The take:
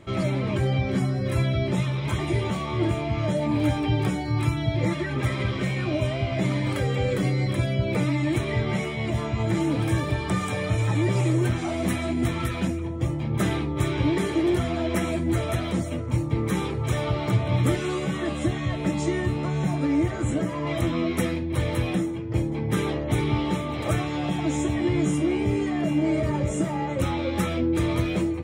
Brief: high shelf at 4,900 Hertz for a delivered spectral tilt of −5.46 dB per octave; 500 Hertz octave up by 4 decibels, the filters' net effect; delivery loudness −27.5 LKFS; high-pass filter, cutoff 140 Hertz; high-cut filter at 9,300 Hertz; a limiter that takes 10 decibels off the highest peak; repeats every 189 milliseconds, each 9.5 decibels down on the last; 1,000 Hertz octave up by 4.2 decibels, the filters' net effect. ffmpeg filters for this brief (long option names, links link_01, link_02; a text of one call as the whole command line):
ffmpeg -i in.wav -af "highpass=140,lowpass=9300,equalizer=frequency=500:width_type=o:gain=4.5,equalizer=frequency=1000:width_type=o:gain=3.5,highshelf=frequency=4900:gain=8,alimiter=limit=-18dB:level=0:latency=1,aecho=1:1:189|378|567|756:0.335|0.111|0.0365|0.012,volume=-1.5dB" out.wav